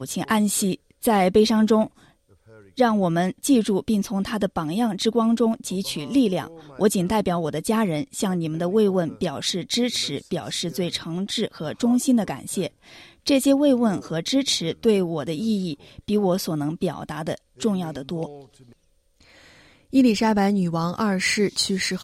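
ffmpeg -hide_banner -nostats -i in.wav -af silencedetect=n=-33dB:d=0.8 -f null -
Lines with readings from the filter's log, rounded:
silence_start: 1.87
silence_end: 2.78 | silence_duration: 0.91
silence_start: 18.36
silence_end: 19.93 | silence_duration: 1.58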